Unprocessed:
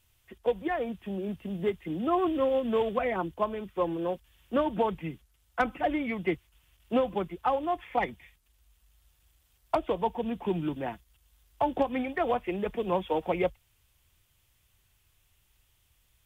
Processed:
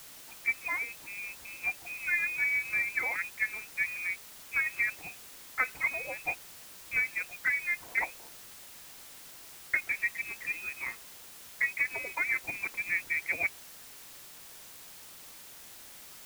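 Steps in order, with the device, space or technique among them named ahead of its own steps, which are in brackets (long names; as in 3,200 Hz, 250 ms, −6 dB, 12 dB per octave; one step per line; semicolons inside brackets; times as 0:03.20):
scrambled radio voice (band-pass filter 390–3,100 Hz; voice inversion scrambler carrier 2,800 Hz; white noise bed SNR 14 dB)
level −2 dB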